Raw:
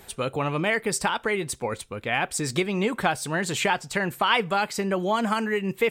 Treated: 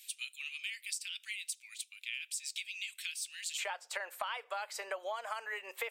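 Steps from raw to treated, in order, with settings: elliptic high-pass 2.5 kHz, stop band 80 dB, from 3.57 s 540 Hz; compression 8:1, threshold -35 dBFS, peak gain reduction 18 dB; trim -1 dB

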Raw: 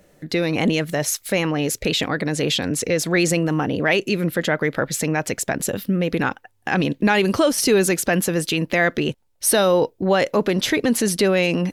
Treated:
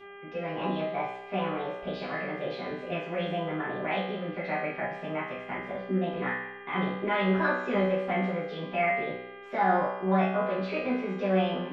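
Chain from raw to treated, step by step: low-pass 2 kHz 24 dB/octave; hum notches 60/120/180 Hz; formant shift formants +4 st; bass shelf 230 Hz -6.5 dB; feedback comb 63 Hz, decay 0.84 s, harmonics all, mix 90%; mains buzz 400 Hz, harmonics 8, -51 dBFS -3 dB/octave; reverberation, pre-delay 3 ms, DRR -7.5 dB; trim -5 dB

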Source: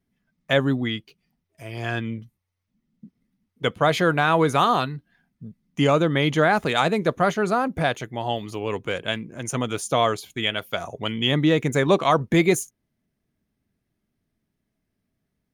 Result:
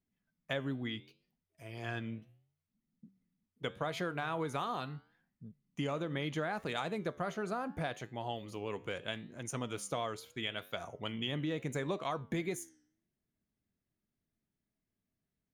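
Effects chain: compression, threshold -21 dBFS, peak gain reduction 8 dB; flange 0.74 Hz, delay 8.9 ms, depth 6.3 ms, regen -87%; trim -7 dB

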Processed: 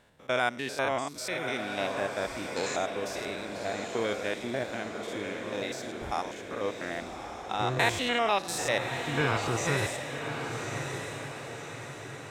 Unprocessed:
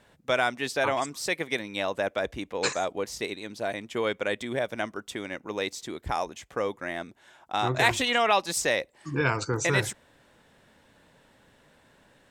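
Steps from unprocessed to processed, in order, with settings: spectrogram pixelated in time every 100 ms; echo that smears into a reverb 1170 ms, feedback 52%, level -6 dB; trim -1 dB

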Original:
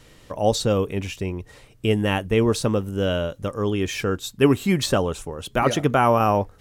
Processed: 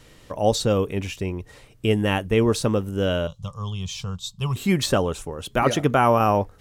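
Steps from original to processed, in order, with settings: 3.27–4.56 s: FFT filter 180 Hz 0 dB, 270 Hz -28 dB, 1.1 kHz -2 dB, 1.7 kHz -25 dB, 3.4 kHz +1 dB, 7.4 kHz -2 dB, 11 kHz -12 dB

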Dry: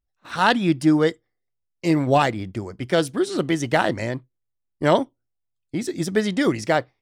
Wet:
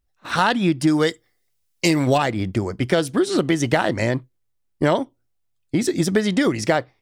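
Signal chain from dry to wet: 0.87–2.18 s: treble shelf 2.3 kHz +11.5 dB; compression 6:1, threshold -23 dBFS, peak gain reduction 11.5 dB; trim +8 dB

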